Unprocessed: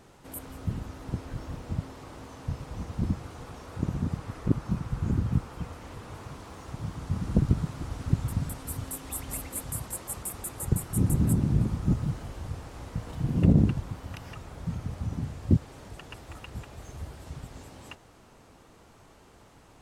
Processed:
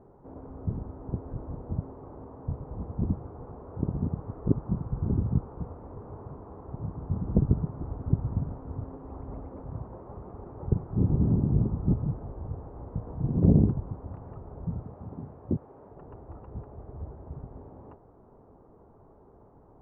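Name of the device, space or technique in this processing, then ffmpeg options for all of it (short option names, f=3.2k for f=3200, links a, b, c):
under water: -filter_complex "[0:a]lowpass=f=990:w=0.5412,lowpass=f=990:w=1.3066,equalizer=f=410:t=o:w=0.26:g=5.5,asettb=1/sr,asplit=3[a][b][c];[a]atrim=end=14.834[d];[b]atrim=start=14.83:end=15.96,asetpts=PTS-STARTPTS,afade=t=in:d=0.004:c=qsin,afade=t=out:st=1.126:d=0.004:c=qsin,aemphasis=mode=production:type=bsi[e];[c]atrim=start=15.956[f];[d][e]acrossfade=d=0.004:c1=hsin:c2=qsin[g];[g][f]acrossfade=d=0.004:c1=qsin:c2=hsin"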